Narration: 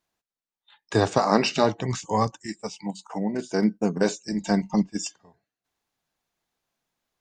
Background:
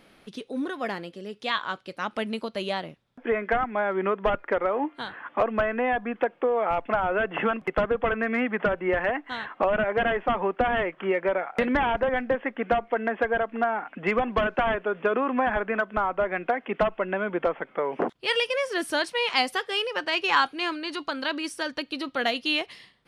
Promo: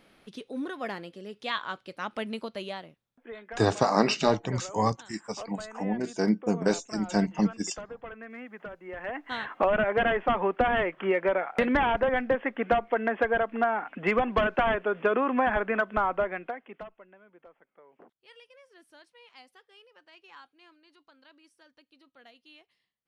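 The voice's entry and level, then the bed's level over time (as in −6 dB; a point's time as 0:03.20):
2.65 s, −2.5 dB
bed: 0:02.49 −4 dB
0:03.25 −17 dB
0:08.88 −17 dB
0:09.32 −0.5 dB
0:16.16 −0.5 dB
0:17.18 −29 dB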